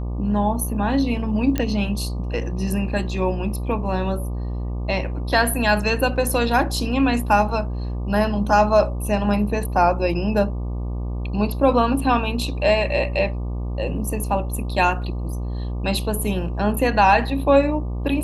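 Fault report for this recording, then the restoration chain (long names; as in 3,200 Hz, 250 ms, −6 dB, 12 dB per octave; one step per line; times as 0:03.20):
mains buzz 60 Hz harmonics 20 −26 dBFS
0:01.58: click −9 dBFS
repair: click removal
hum removal 60 Hz, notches 20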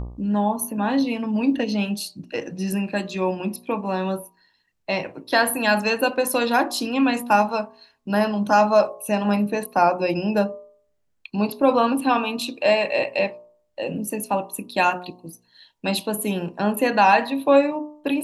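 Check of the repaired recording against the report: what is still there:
none of them is left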